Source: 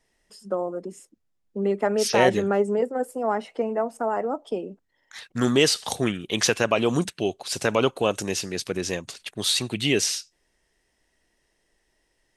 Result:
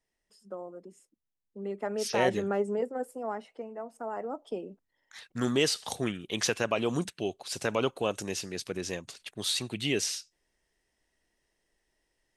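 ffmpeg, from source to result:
-af "volume=2dB,afade=t=in:st=1.58:d=0.72:silence=0.473151,afade=t=out:st=2.92:d=0.79:silence=0.354813,afade=t=in:st=3.71:d=0.84:silence=0.354813"

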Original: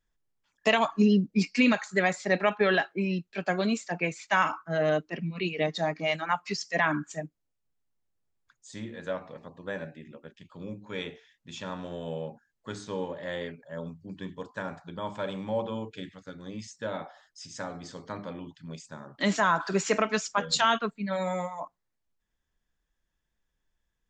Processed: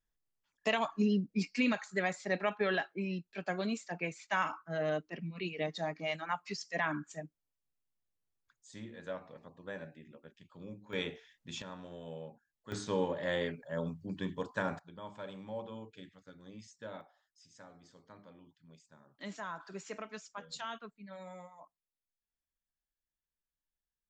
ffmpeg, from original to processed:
-af "asetnsamples=n=441:p=0,asendcmd='10.93 volume volume -1dB;11.62 volume volume -10dB;12.72 volume volume 1dB;14.79 volume volume -11.5dB;17.01 volume volume -18dB',volume=-8dB"

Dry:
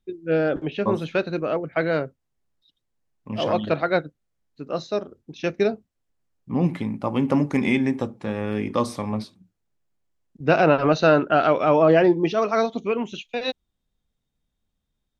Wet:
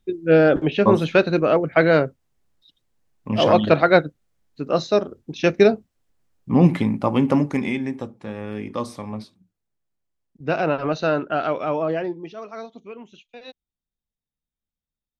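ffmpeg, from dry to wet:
-af "volume=7dB,afade=t=out:st=6.78:d=0.96:silence=0.266073,afade=t=out:st=11.58:d=0.67:silence=0.334965"

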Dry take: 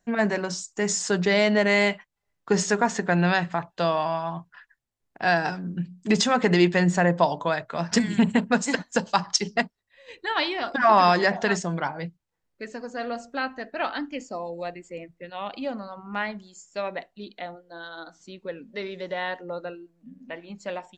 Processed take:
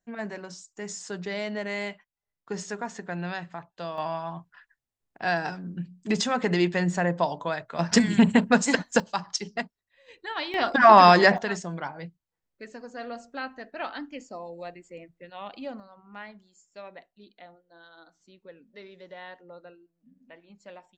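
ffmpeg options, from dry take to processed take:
-af "asetnsamples=n=441:p=0,asendcmd='3.98 volume volume -4.5dB;7.79 volume volume 2dB;9 volume volume -7dB;10.54 volume volume 4dB;11.38 volume volume -6dB;15.8 volume volume -13dB',volume=-11.5dB"

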